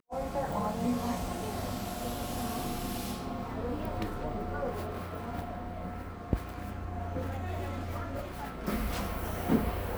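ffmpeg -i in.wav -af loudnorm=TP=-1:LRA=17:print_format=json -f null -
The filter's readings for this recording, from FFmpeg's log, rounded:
"input_i" : "-35.2",
"input_tp" : "-14.0",
"input_lra" : "3.0",
"input_thresh" : "-45.2",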